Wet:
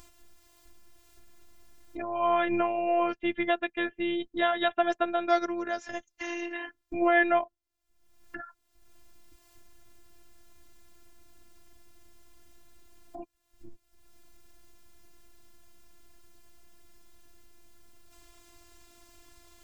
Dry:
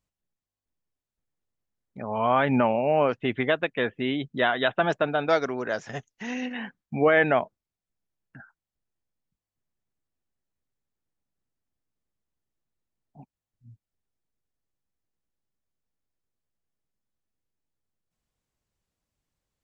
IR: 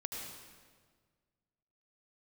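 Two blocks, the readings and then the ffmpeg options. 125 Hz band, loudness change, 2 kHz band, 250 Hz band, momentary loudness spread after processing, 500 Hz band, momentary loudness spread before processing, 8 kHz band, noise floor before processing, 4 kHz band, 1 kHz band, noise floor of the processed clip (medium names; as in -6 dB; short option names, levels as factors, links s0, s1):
under -15 dB, -3.5 dB, -3.5 dB, -2.5 dB, 19 LU, -4.5 dB, 14 LU, no reading, under -85 dBFS, -3.5 dB, -1.0 dB, -75 dBFS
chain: -af "afftfilt=real='hypot(re,im)*cos(PI*b)':imag='0':win_size=512:overlap=0.75,acompressor=mode=upward:threshold=0.0398:ratio=2.5"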